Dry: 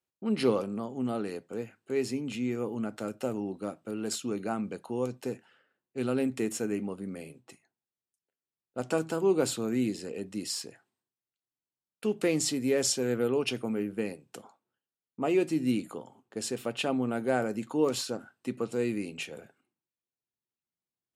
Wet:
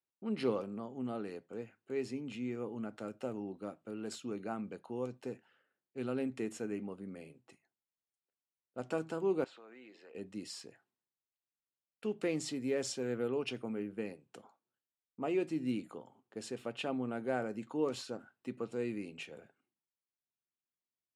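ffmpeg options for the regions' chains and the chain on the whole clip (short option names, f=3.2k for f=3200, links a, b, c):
-filter_complex "[0:a]asettb=1/sr,asplit=3[a][b][c];[a]atrim=end=9.444[d];[b]atrim=start=9.44:end=10.15,asetpts=PTS-STARTPTS,afade=t=in:d=0.004:c=qsin,afade=t=out:st=0.706:d=0.004:c=qsin,highpass=690,lowpass=2.8k,acompressor=threshold=-45dB:ratio=3:attack=3.2:release=140:knee=1:detection=peak[e];[c]atrim=start=10.146[f];[d][e]acrossfade=d=0.004:c1=hsin:c2=qsin[g];[g][f]acrossfade=d=0.004:c1=qsin:c2=hsin,lowpass=10k,bass=f=250:g=-1,treble=f=4k:g=-6,volume=-7dB"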